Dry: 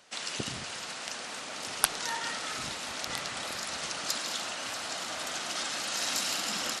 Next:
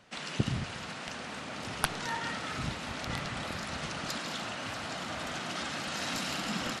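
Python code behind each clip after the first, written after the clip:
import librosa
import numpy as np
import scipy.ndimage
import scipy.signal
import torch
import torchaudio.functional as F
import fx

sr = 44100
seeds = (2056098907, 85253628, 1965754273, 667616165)

y = fx.bass_treble(x, sr, bass_db=13, treble_db=-10)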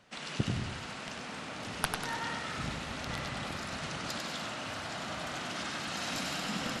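y = fx.echo_feedback(x, sr, ms=97, feedback_pct=40, wet_db=-5.0)
y = y * librosa.db_to_amplitude(-2.5)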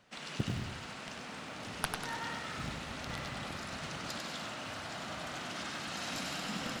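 y = fx.quant_float(x, sr, bits=4)
y = y * librosa.db_to_amplitude(-3.0)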